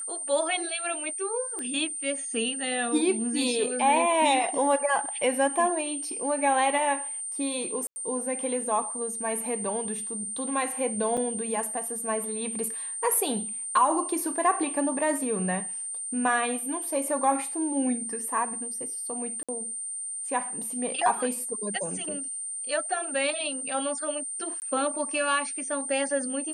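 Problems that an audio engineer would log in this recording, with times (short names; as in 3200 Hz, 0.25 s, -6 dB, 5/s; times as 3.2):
tone 8900 Hz -32 dBFS
1.59 pop -23 dBFS
7.87–7.96 gap 90 ms
11.17–11.18 gap 5.8 ms
19.43–19.49 gap 56 ms
24.6–24.62 gap 19 ms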